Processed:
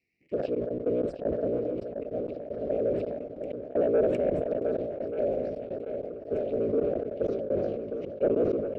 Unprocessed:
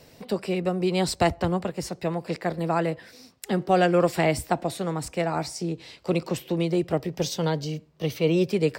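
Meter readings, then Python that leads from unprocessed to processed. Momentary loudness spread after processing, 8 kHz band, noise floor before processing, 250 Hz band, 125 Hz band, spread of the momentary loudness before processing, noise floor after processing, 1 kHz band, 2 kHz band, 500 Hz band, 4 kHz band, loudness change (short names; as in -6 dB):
10 LU, under -30 dB, -54 dBFS, -6.5 dB, -13.0 dB, 10 LU, -43 dBFS, -15.5 dB, -17.5 dB, -0.5 dB, under -20 dB, -3.5 dB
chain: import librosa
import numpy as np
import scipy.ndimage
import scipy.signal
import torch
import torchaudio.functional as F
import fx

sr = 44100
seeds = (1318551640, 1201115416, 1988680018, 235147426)

y = fx.cycle_switch(x, sr, every=3, mode='inverted')
y = fx.auto_wah(y, sr, base_hz=510.0, top_hz=2100.0, q=2.2, full_db=-22.0, direction='down')
y = fx.env_phaser(y, sr, low_hz=560.0, high_hz=4800.0, full_db=-27.0)
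y = scipy.signal.sosfilt(scipy.signal.ellip(3, 1.0, 40, [620.0, 2300.0], 'bandstop', fs=sr, output='sos'), y)
y = fx.spec_erase(y, sr, start_s=1.12, length_s=0.25, low_hz=950.0, high_hz=8400.0)
y = fx.leveller(y, sr, passes=1)
y = fx.spacing_loss(y, sr, db_at_10k=23)
y = fx.echo_swing(y, sr, ms=1183, ratio=1.5, feedback_pct=51, wet_db=-8)
y = fx.step_gate(y, sr, bpm=192, pattern='xxxxxxx..x.xx...', floor_db=-24.0, edge_ms=4.5)
y = fx.low_shelf(y, sr, hz=82.0, db=8.0)
y = fx.sustainer(y, sr, db_per_s=33.0)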